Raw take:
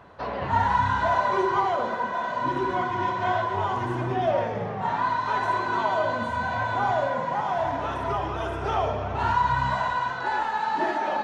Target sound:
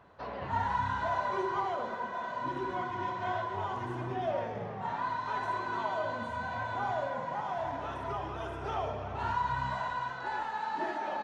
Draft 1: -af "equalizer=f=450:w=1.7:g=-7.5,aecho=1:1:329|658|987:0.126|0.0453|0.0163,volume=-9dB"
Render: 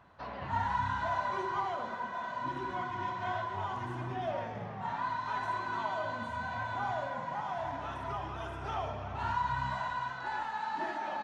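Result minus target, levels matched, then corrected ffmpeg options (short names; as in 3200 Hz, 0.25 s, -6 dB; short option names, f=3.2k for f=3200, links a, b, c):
500 Hz band -2.5 dB
-af "aecho=1:1:329|658|987:0.126|0.0453|0.0163,volume=-9dB"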